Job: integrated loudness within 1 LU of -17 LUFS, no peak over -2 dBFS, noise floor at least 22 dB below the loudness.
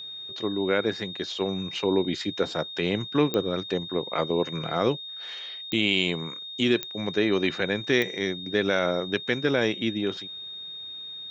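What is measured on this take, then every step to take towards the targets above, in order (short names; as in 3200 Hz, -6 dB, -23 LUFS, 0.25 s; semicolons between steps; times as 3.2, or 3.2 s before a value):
clicks 4; steady tone 3700 Hz; tone level -36 dBFS; loudness -27.0 LUFS; peak -8.5 dBFS; loudness target -17.0 LUFS
-> de-click; notch 3700 Hz, Q 30; gain +10 dB; limiter -2 dBFS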